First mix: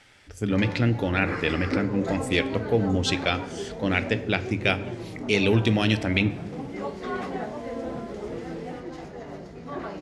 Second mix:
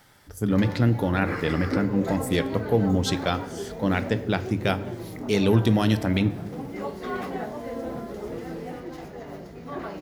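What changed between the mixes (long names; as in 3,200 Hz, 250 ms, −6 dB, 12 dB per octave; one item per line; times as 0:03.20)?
speech: add graphic EQ with 15 bands 160 Hz +6 dB, 1,000 Hz +5 dB, 2,500 Hz −10 dB
master: remove low-pass filter 8,900 Hz 24 dB per octave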